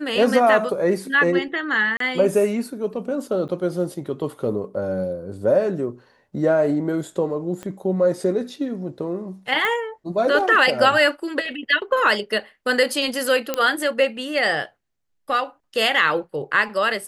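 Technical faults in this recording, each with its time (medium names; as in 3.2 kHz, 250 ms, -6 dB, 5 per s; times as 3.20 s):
1.97–2.00 s: dropout 33 ms
3.48–3.49 s: dropout 9 ms
7.63 s: pop -19 dBFS
9.65 s: pop -10 dBFS
13.54 s: pop -7 dBFS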